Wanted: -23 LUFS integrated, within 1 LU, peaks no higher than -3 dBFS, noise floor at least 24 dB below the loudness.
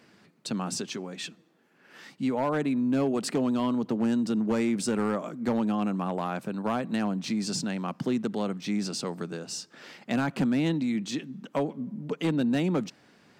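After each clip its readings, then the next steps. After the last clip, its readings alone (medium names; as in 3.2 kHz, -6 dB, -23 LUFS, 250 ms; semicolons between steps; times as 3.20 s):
clipped samples 0.9%; clipping level -20.0 dBFS; loudness -29.0 LUFS; peak level -20.0 dBFS; loudness target -23.0 LUFS
-> clip repair -20 dBFS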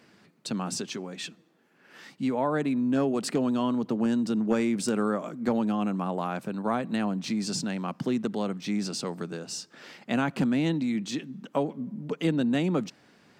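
clipped samples 0.0%; loudness -29.0 LUFS; peak level -11.5 dBFS; loudness target -23.0 LUFS
-> trim +6 dB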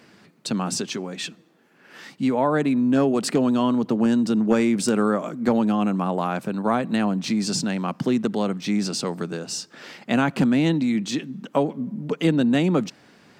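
loudness -23.0 LUFS; peak level -5.5 dBFS; noise floor -55 dBFS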